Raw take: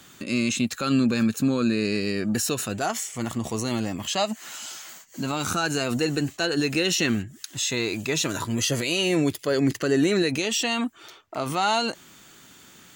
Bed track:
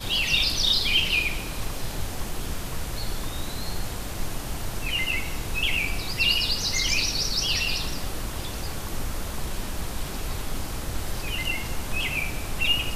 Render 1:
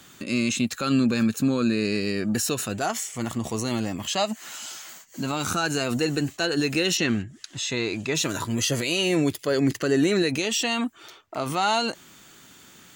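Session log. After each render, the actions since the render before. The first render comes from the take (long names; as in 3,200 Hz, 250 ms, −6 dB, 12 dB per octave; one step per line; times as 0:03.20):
0:06.97–0:08.15: high-frequency loss of the air 60 metres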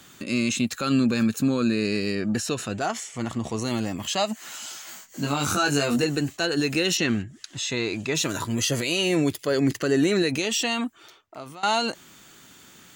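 0:02.15–0:03.62: high-frequency loss of the air 51 metres
0:04.85–0:06.04: double-tracking delay 21 ms −2 dB
0:10.68–0:11.63: fade out, to −19.5 dB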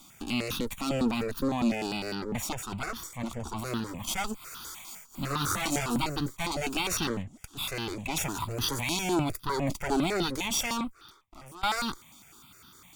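lower of the sound and its delayed copy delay 0.87 ms
step-sequenced phaser 9.9 Hz 450–2,200 Hz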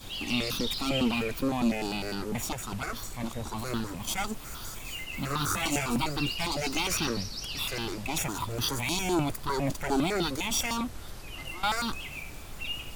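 mix in bed track −12.5 dB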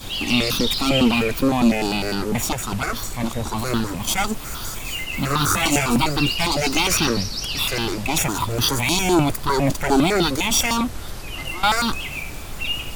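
level +10 dB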